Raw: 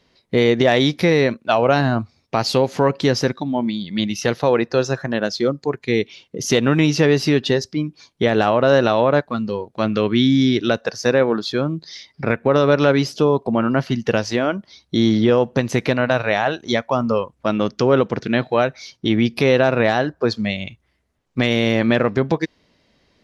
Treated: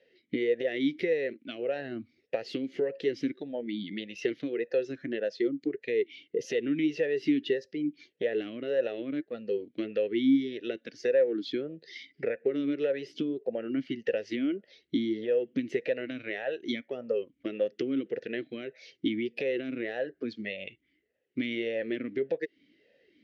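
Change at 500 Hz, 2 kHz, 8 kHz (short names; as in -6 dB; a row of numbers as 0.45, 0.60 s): -12.0 dB, -15.0 dB, under -20 dB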